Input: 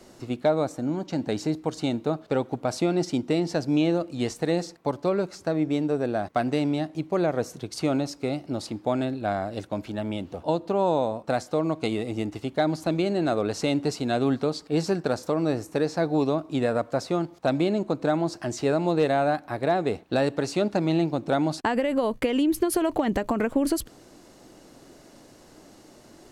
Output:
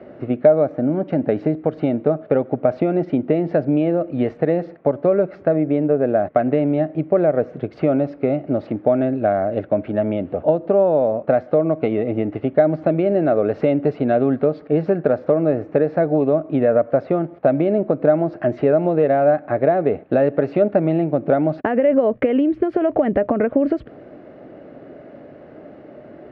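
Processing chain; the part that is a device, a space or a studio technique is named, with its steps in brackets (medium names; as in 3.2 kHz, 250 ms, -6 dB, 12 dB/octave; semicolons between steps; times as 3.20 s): bass amplifier (compression 3:1, threshold -26 dBFS, peak gain reduction 7.5 dB; cabinet simulation 72–2200 Hz, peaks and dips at 150 Hz +3 dB, 260 Hz +3 dB, 430 Hz +4 dB, 600 Hz +10 dB, 970 Hz -8 dB); trim +7.5 dB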